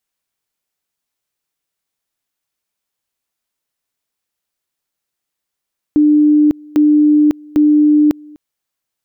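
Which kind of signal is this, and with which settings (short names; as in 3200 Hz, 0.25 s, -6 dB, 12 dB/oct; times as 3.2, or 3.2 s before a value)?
two-level tone 299 Hz -6.5 dBFS, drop 27 dB, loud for 0.55 s, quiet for 0.25 s, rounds 3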